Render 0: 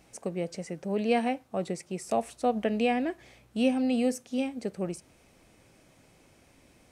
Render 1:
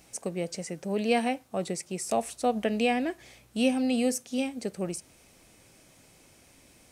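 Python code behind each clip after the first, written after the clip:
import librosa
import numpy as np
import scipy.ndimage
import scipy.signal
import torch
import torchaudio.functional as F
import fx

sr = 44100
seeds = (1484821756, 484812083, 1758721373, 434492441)

y = fx.high_shelf(x, sr, hz=3700.0, db=9.5)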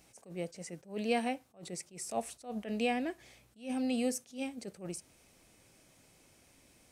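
y = fx.attack_slew(x, sr, db_per_s=190.0)
y = y * 10.0 ** (-6.0 / 20.0)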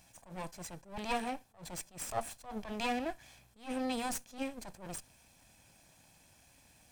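y = fx.lower_of_two(x, sr, delay_ms=1.2)
y = y * 10.0 ** (2.0 / 20.0)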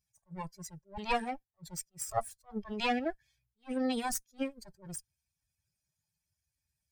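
y = fx.bin_expand(x, sr, power=2.0)
y = y * 10.0 ** (6.5 / 20.0)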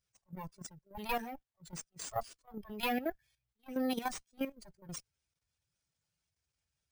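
y = np.repeat(x[::3], 3)[:len(x)]
y = fx.level_steps(y, sr, step_db=11)
y = y * 10.0 ** (1.0 / 20.0)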